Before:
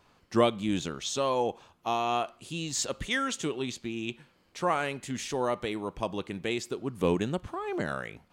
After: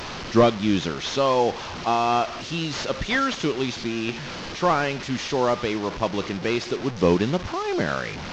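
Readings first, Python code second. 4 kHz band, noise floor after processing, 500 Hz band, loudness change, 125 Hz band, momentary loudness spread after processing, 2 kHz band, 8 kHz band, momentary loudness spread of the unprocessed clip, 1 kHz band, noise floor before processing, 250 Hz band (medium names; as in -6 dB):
+7.0 dB, -34 dBFS, +7.5 dB, +7.0 dB, +8.0 dB, 8 LU, +7.5 dB, -0.5 dB, 8 LU, +7.5 dB, -66 dBFS, +7.5 dB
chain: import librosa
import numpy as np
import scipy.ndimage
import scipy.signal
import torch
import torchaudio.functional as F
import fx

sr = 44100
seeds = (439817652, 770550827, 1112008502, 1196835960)

y = fx.delta_mod(x, sr, bps=32000, step_db=-35.0)
y = F.gain(torch.from_numpy(y), 7.5).numpy()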